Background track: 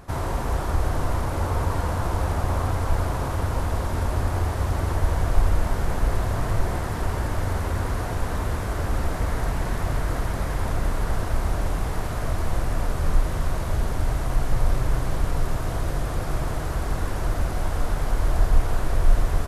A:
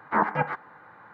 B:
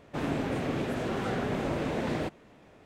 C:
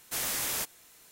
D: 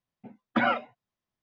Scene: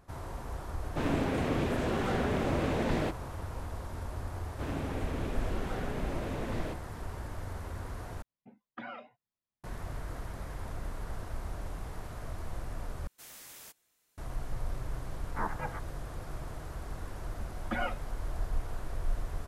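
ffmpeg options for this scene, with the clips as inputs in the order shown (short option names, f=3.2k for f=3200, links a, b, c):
-filter_complex "[2:a]asplit=2[a][b];[4:a]asplit=2[c][d];[0:a]volume=-14.5dB[e];[c]acompressor=threshold=-30dB:ratio=6:attack=3.2:release=140:knee=1:detection=peak[f];[d]aecho=1:1:5.6:0.87[g];[e]asplit=3[h][i][j];[h]atrim=end=8.224[k];[f]atrim=end=1.42,asetpts=PTS-STARTPTS,volume=-9dB[l];[i]atrim=start=9.636:end=13.074[m];[3:a]atrim=end=1.11,asetpts=PTS-STARTPTS,volume=-18dB[n];[j]atrim=start=14.176[o];[a]atrim=end=2.85,asetpts=PTS-STARTPTS,afade=t=in:d=0.004:c=hsin,afade=t=out:st=2.846:d=0.004:c=hsin,adelay=820[p];[b]atrim=end=2.85,asetpts=PTS-STARTPTS,volume=-7dB,afade=t=in:d=0.004:c=hsin,afade=t=out:st=2.846:d=0.004:c=hsin,adelay=196245S[q];[1:a]atrim=end=1.13,asetpts=PTS-STARTPTS,volume=-12.5dB,afade=t=in:d=0.004:c=hsin,afade=t=out:st=1.126:d=0.004:c=hsin,adelay=672084S[r];[g]atrim=end=1.42,asetpts=PTS-STARTPTS,volume=-12dB,afade=t=in:d=0.004:c=hsin,afade=t=out:st=1.416:d=0.004:c=hsin,adelay=17150[s];[k][l]acrossfade=d=0.004:c1=hsin:c2=hsin[t];[t][m]acrossfade=d=0.004:c1=hsin:c2=hsin[u];[u][n]acrossfade=d=0.004:c1=hsin:c2=hsin[v];[v][o]acrossfade=d=0.004:c1=hsin:c2=hsin[w];[w][p][q][r][s]amix=inputs=5:normalize=0"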